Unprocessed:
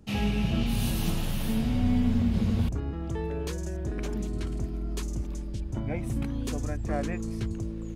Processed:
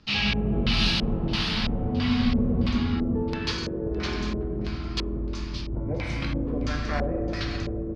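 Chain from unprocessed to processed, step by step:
rectangular room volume 120 cubic metres, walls hard, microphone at 0.48 metres
auto-filter low-pass square 1.5 Hz 500–4,700 Hz
flat-topped bell 2,300 Hz +11.5 dB 2.8 octaves
on a send: single-tap delay 613 ms −18.5 dB
on the sum: level −4 dB

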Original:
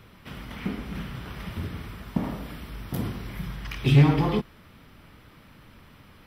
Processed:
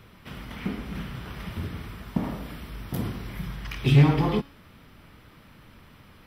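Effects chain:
hum removal 279.5 Hz, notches 21

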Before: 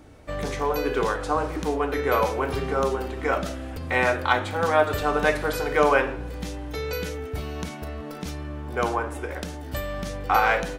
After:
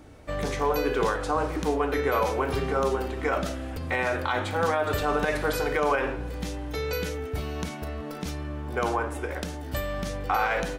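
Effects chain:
brickwall limiter −14.5 dBFS, peak gain reduction 10 dB

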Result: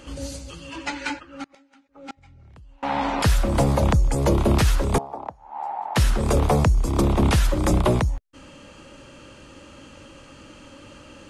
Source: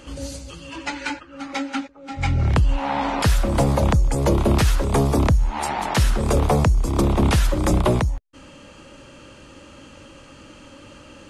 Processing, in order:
0:01.43–0:02.83: gate with flip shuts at −23 dBFS, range −29 dB
0:04.98–0:05.96: resonant band-pass 810 Hz, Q 4.8
level −1 dB

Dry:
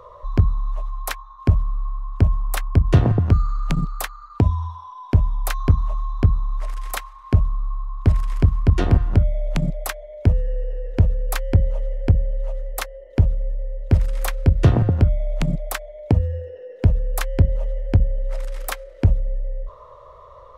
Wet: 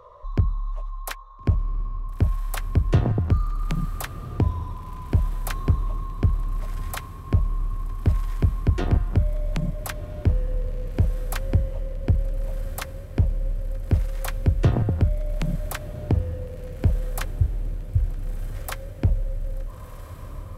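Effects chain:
0:17.25–0:18.55: Chebyshev band-stop filter 130–8,400 Hz, order 5
feedback delay with all-pass diffusion 1,376 ms, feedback 62%, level −14 dB
level −5 dB

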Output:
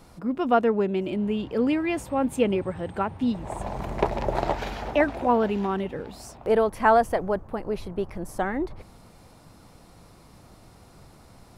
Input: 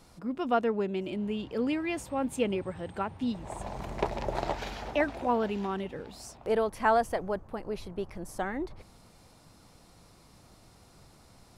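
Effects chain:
parametric band 5,800 Hz −5.5 dB 2.3 octaves
level +6.5 dB

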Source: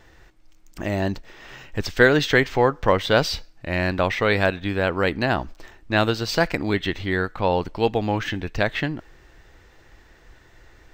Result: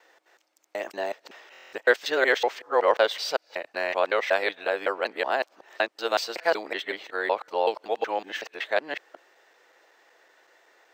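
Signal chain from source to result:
reversed piece by piece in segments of 187 ms
four-pole ladder high-pass 420 Hz, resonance 30%
buffer that repeats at 0:01.52, samples 1,024, times 8
level +2.5 dB

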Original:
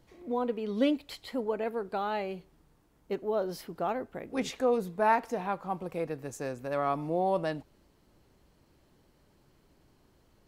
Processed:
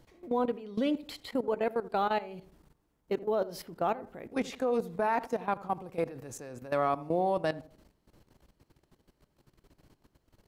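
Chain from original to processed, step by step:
output level in coarse steps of 16 dB
feedback echo with a low-pass in the loop 82 ms, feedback 42%, low-pass 880 Hz, level −16 dB
level +4.5 dB

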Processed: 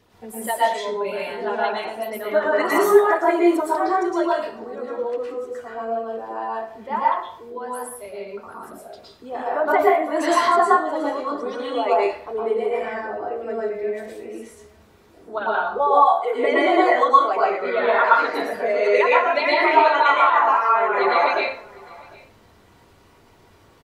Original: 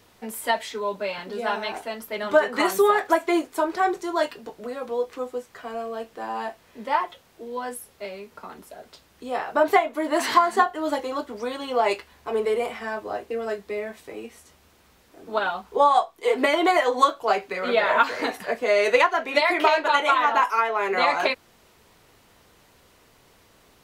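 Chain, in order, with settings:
spectral envelope exaggerated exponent 1.5
on a send: single-tap delay 754 ms −24 dB
on the sum: dense smooth reverb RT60 0.54 s, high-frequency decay 0.75×, pre-delay 100 ms, DRR −5.5 dB
level −3 dB

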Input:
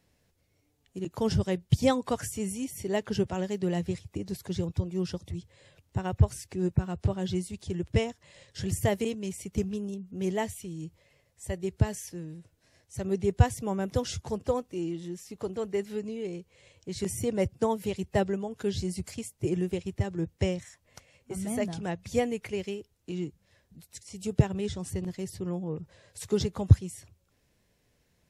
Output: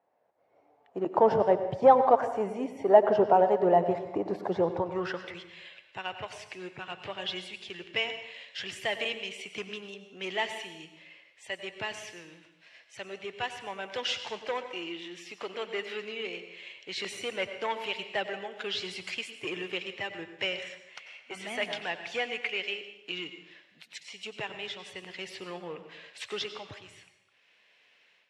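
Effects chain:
high-pass filter 83 Hz
automatic gain control gain up to 15.5 dB
mid-hump overdrive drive 14 dB, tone 1,000 Hz, clips at −0.5 dBFS
in parallel at −11 dB: hard clipping −13.5 dBFS, distortion −10 dB
on the sum: band-pass filter sweep 760 Hz → 2,800 Hz, 0:04.73–0:05.42
on a send at −9 dB: convolution reverb RT60 0.90 s, pre-delay 83 ms

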